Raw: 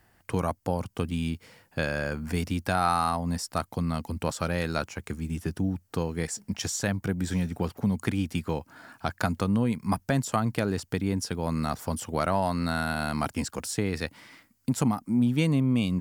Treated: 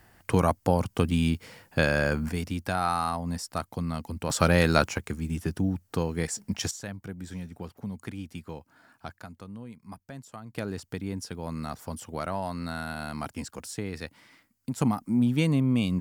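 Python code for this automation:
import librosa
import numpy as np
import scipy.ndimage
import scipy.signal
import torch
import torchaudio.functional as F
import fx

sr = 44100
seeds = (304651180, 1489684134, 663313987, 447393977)

y = fx.gain(x, sr, db=fx.steps((0.0, 5.0), (2.29, -2.5), (4.3, 7.5), (4.98, 1.0), (6.71, -10.0), (9.19, -17.0), (10.55, -6.0), (14.81, 0.0)))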